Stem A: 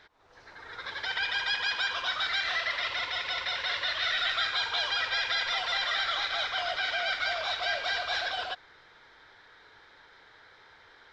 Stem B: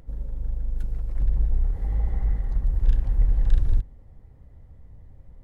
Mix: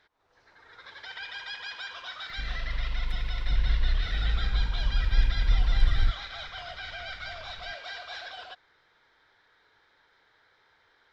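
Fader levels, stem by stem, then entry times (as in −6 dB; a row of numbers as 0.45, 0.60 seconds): −9.0, −3.0 decibels; 0.00, 2.30 seconds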